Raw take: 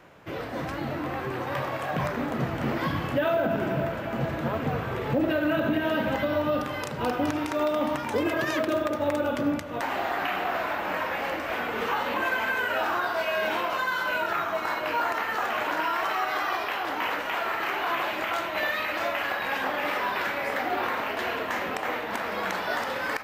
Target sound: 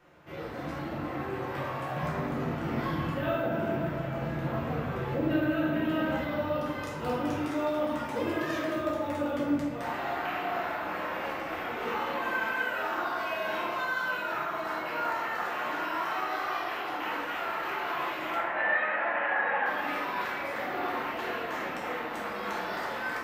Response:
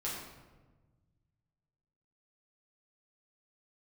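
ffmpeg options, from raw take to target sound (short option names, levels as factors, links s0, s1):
-filter_complex "[0:a]asettb=1/sr,asplit=3[s0][s1][s2];[s0]atrim=end=18.354[s3];[s1]atrim=start=18.35:end=19.66,asetpts=PTS-STARTPTS,afade=t=in:d=0.004:c=qsin,afade=t=out:st=1.306:d=0.004:c=qsin,highpass=f=170:w=0.5412,highpass=f=170:w=1.3066,equalizer=f=330:t=q:w=4:g=-4,equalizer=f=500:t=q:w=4:g=6,equalizer=f=820:t=q:w=4:g=8,equalizer=f=1700:t=q:w=4:g=10,lowpass=f=2700:w=0.5412,lowpass=f=2700:w=1.3066[s4];[s2]atrim=start=19.656[s5];[s3][s4]acrossfade=d=0.004:c1=hsin:c2=qsin[s6];[s6][s5]acrossfade=d=0.004:c1=qsin:c2=hsin[s7];[1:a]atrim=start_sample=2205,afade=t=out:st=0.45:d=0.01,atrim=end_sample=20286[s8];[s7][s8]afir=irnorm=-1:irlink=0,volume=0.422"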